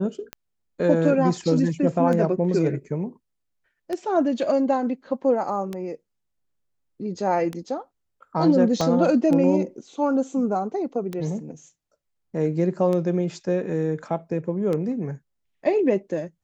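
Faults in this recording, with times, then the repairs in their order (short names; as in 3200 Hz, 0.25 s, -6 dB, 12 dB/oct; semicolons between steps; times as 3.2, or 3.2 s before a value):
tick 33 1/3 rpm -16 dBFS
8.81 pop -11 dBFS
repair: de-click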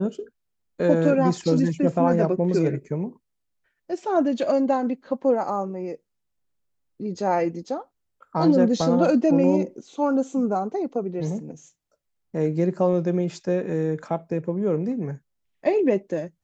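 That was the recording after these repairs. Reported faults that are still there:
8.81 pop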